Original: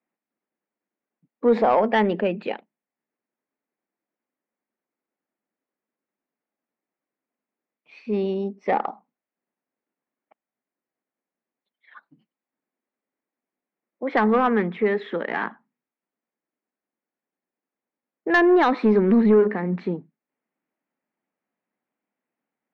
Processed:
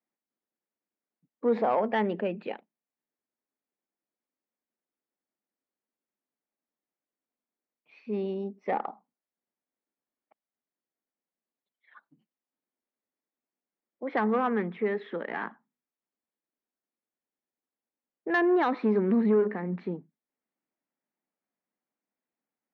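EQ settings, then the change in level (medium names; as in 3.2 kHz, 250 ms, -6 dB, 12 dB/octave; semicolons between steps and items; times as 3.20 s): high-pass 64 Hz; low-pass 3.6 kHz 6 dB/octave; -7.0 dB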